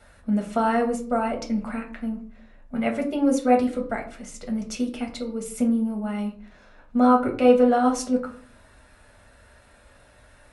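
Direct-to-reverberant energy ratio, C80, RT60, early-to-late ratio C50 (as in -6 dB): 1.0 dB, 15.0 dB, 0.50 s, 10.5 dB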